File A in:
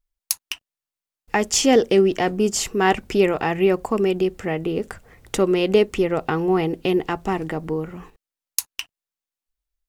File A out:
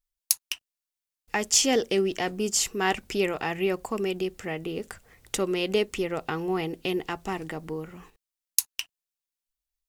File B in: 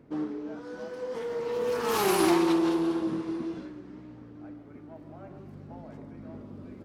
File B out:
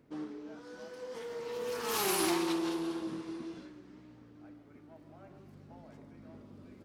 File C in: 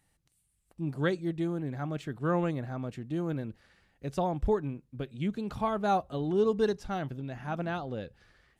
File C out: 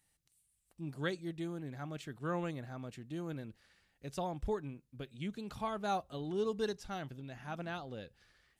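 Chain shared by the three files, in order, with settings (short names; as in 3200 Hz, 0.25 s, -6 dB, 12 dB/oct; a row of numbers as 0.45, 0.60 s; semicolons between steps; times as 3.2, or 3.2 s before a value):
high shelf 2100 Hz +9.5 dB; gain -9 dB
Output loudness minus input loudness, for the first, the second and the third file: -6.5, -7.0, -8.5 LU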